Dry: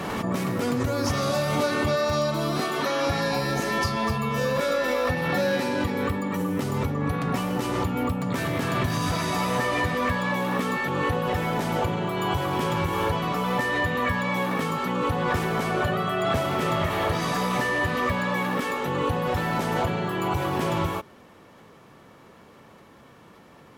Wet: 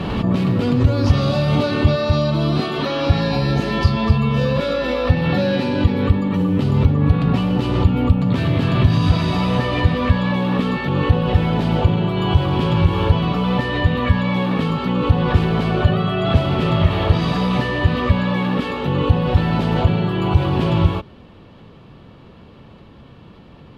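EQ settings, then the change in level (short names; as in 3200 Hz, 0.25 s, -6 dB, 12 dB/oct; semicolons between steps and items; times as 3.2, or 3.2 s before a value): RIAA curve playback; band shelf 3500 Hz +10 dB 1.1 oct; +1.5 dB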